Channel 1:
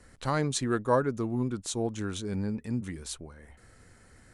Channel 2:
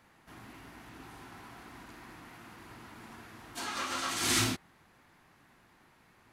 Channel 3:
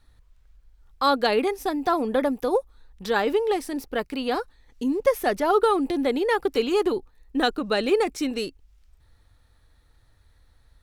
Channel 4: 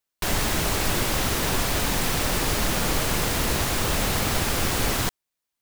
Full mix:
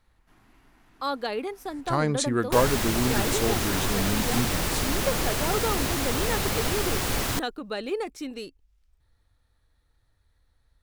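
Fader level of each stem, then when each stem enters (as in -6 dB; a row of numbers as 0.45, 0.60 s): +3.0, -10.0, -8.5, -3.0 dB; 1.65, 0.00, 0.00, 2.30 s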